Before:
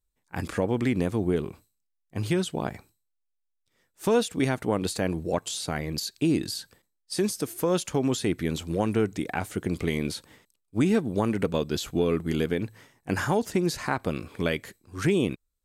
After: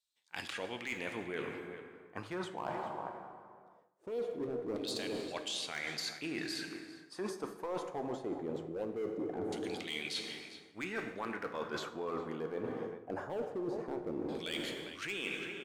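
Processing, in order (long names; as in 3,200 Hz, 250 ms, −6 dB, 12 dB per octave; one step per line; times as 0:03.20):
auto-filter band-pass saw down 0.21 Hz 340–4,000 Hz
slap from a distant wall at 69 metres, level −16 dB
in parallel at −4 dB: wave folding −31 dBFS
on the sum: parametric band 2,200 Hz −5 dB 2.5 octaves
dense smooth reverb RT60 2.2 s, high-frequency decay 0.6×, DRR 6.5 dB
reversed playback
downward compressor 16 to 1, threshold −44 dBFS, peak gain reduction 25 dB
reversed playback
level +9 dB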